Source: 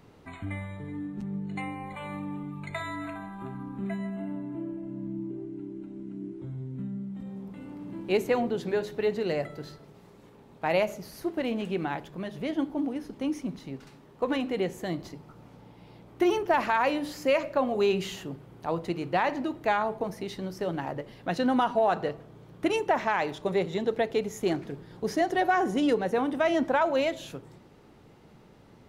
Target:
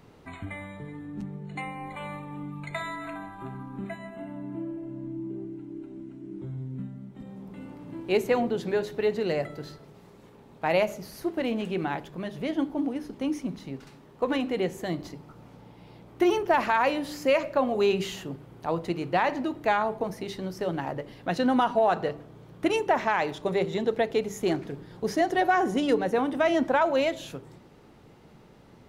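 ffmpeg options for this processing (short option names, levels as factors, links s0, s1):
-af "bandreject=f=98.08:t=h:w=4,bandreject=f=196.16:t=h:w=4,bandreject=f=294.24:t=h:w=4,bandreject=f=392.32:t=h:w=4,volume=1.19"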